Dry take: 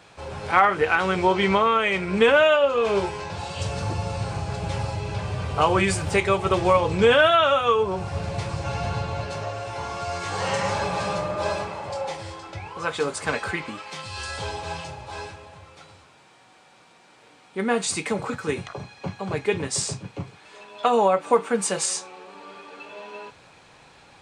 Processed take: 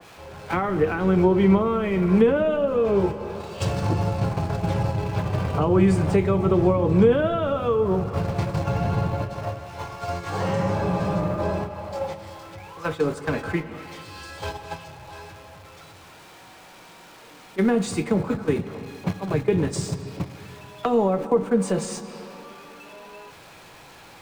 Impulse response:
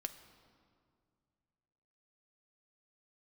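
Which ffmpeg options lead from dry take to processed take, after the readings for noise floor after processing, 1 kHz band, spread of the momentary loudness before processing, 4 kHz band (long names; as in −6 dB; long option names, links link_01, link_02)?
−47 dBFS, −5.5 dB, 18 LU, −9.5 dB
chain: -filter_complex "[0:a]aeval=exprs='val(0)+0.5*0.0251*sgn(val(0))':channel_layout=same,agate=range=-17dB:threshold=-26dB:ratio=16:detection=peak,asplit=2[link_01][link_02];[1:a]atrim=start_sample=2205,asetrate=43218,aresample=44100,highshelf=frequency=6500:gain=-10.5[link_03];[link_02][link_03]afir=irnorm=-1:irlink=0,volume=5.5dB[link_04];[link_01][link_04]amix=inputs=2:normalize=0,acrossover=split=370[link_05][link_06];[link_06]acompressor=threshold=-29dB:ratio=4[link_07];[link_05][link_07]amix=inputs=2:normalize=0,acrossover=split=110|840[link_08][link_09][link_10];[link_08]asoftclip=type=tanh:threshold=-32.5dB[link_11];[link_11][link_09][link_10]amix=inputs=3:normalize=0,adynamicequalizer=threshold=0.0112:dfrequency=1700:dqfactor=0.7:tfrequency=1700:tqfactor=0.7:attack=5:release=100:ratio=0.375:range=3.5:mode=cutabove:tftype=highshelf"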